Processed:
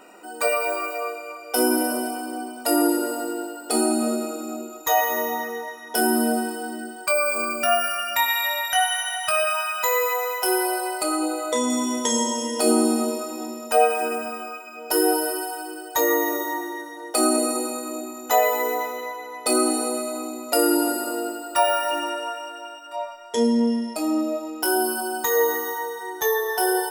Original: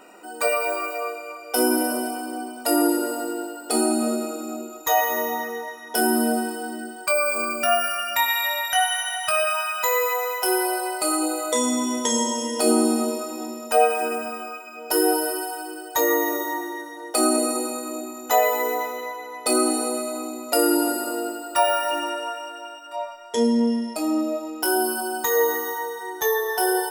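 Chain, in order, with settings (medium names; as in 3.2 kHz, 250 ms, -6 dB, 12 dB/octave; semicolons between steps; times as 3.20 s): 11.03–11.70 s: treble shelf 6.2 kHz -8 dB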